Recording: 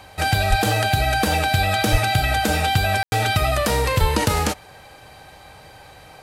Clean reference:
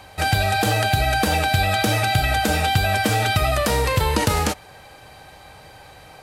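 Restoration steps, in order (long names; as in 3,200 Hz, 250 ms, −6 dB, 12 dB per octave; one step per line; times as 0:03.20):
0:00.49–0:00.61: high-pass filter 140 Hz 24 dB per octave
0:01.91–0:02.03: high-pass filter 140 Hz 24 dB per octave
0:04.00–0:04.12: high-pass filter 140 Hz 24 dB per octave
ambience match 0:03.03–0:03.12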